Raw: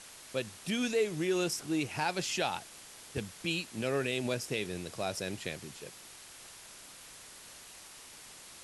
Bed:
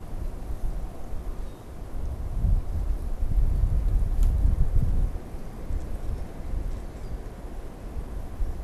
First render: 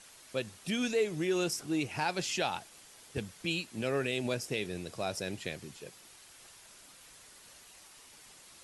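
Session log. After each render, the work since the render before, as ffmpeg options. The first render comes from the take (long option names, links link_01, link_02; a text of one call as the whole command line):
ffmpeg -i in.wav -af "afftdn=noise_reduction=6:noise_floor=-52" out.wav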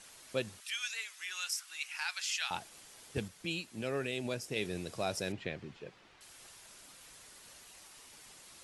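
ffmpeg -i in.wav -filter_complex "[0:a]asettb=1/sr,asplit=3[link_01][link_02][link_03];[link_01]atrim=end=0.604[link_04];[link_02]atrim=start=0.6:end=2.51,asetpts=PTS-STARTPTS,afade=type=in:duration=0.004:curve=qsin,afade=type=out:start_time=1.906:duration=0.004:curve=qsin,highpass=frequency=1300:width=0.5412,highpass=frequency=1300:width=1.3066[link_05];[link_03]atrim=start=2.506[link_06];[link_04][link_05]acrossfade=duration=0.004:curve1=hsin:curve2=qsin[link_07];[link_07][link_06]acrossfade=duration=0.004:curve1=qsin:curve2=hsin,asettb=1/sr,asplit=3[link_08][link_09][link_10];[link_08]atrim=end=5.324[link_11];[link_09]atrim=start=5.32:end=6.21,asetpts=PTS-STARTPTS,afade=type=in:duration=0.004:curve=qsin,afade=type=out:start_time=0.886:duration=0.004:curve=qsin,lowpass=2800[link_12];[link_10]atrim=start=6.206[link_13];[link_11][link_12]acrossfade=duration=0.004:curve1=hsin:curve2=qsin[link_14];[link_14][link_13]acrossfade=duration=0.004:curve1=qsin:curve2=hsin,asplit=3[link_15][link_16][link_17];[link_15]atrim=end=3.282[link_18];[link_16]atrim=start=3.278:end=4.562,asetpts=PTS-STARTPTS,volume=-4dB[link_19];[link_17]atrim=start=4.558[link_20];[link_18][link_19]acrossfade=duration=0.004:curve1=hsin:curve2=hsin[link_21];[link_21][link_20]acrossfade=duration=0.004:curve1=hsin:curve2=hsin" out.wav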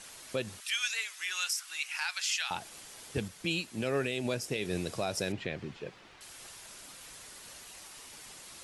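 ffmpeg -i in.wav -af "acontrast=50,alimiter=limit=-21dB:level=0:latency=1:release=134" out.wav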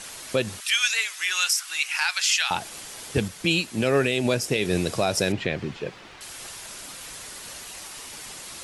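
ffmpeg -i in.wav -af "volume=10dB" out.wav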